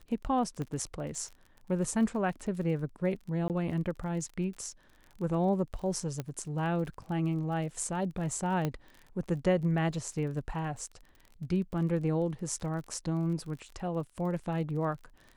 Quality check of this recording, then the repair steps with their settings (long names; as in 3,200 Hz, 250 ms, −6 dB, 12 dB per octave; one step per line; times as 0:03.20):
surface crackle 34 per second −41 dBFS
0:00.62: click −25 dBFS
0:03.48–0:03.50: drop-out 18 ms
0:06.20: click −21 dBFS
0:08.65: click −18 dBFS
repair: click removal
repair the gap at 0:03.48, 18 ms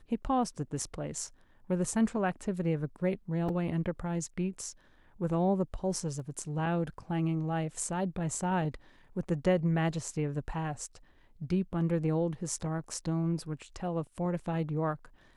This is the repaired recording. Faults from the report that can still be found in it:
0:00.62: click
0:06.20: click